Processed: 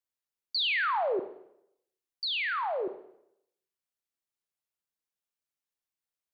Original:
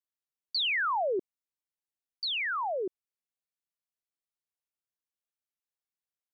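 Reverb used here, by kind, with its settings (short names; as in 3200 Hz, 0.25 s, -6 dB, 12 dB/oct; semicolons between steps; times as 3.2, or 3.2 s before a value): Schroeder reverb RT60 0.77 s, combs from 29 ms, DRR 9 dB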